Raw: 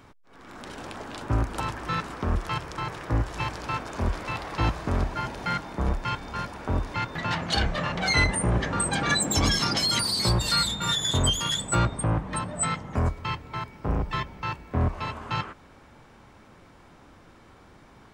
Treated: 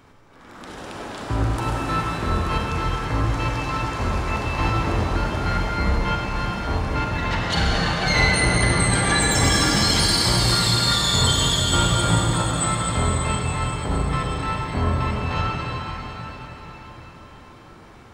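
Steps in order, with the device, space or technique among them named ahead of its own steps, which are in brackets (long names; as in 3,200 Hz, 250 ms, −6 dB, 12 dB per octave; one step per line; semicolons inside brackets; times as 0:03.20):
cathedral (convolution reverb RT60 5.2 s, pre-delay 31 ms, DRR −4.5 dB)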